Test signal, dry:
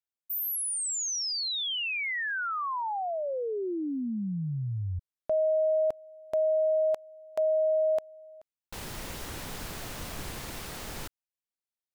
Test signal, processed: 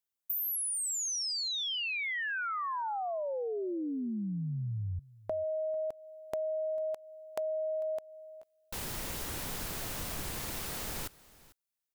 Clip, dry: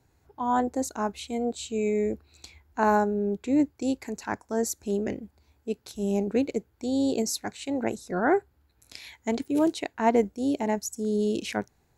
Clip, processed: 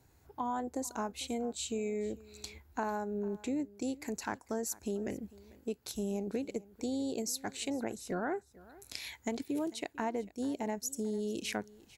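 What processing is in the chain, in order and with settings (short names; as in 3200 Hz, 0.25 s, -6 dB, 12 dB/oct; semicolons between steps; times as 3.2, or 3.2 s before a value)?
high shelf 8200 Hz +7.5 dB; compressor 6:1, threshold -33 dBFS; echo 0.447 s -21 dB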